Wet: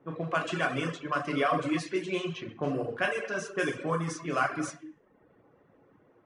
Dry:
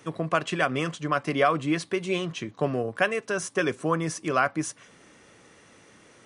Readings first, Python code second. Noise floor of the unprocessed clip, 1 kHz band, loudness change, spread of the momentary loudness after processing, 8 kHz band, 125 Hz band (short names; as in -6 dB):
-55 dBFS, -4.0 dB, -4.0 dB, 7 LU, -7.0 dB, -4.0 dB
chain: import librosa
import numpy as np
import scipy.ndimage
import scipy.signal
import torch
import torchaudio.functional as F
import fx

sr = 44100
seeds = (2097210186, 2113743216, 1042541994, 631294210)

y = fx.rev_gated(x, sr, seeds[0], gate_ms=360, shape='falling', drr_db=-1.5)
y = fx.env_lowpass(y, sr, base_hz=850.0, full_db=-17.5)
y = fx.peak_eq(y, sr, hz=66.0, db=-5.0, octaves=1.1)
y = fx.dereverb_blind(y, sr, rt60_s=0.65)
y = F.gain(torch.from_numpy(y), -6.5).numpy()